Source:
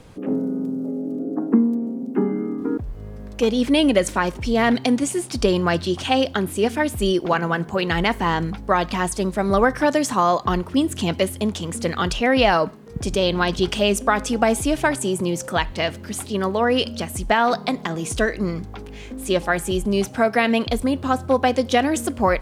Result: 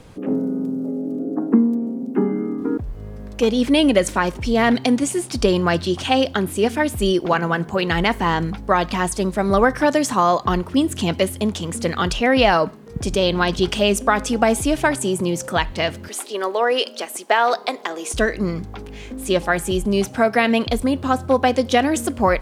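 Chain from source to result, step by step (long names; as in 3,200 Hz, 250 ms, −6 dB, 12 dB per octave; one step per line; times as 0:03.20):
0:16.08–0:18.14: high-pass filter 350 Hz 24 dB per octave
level +1.5 dB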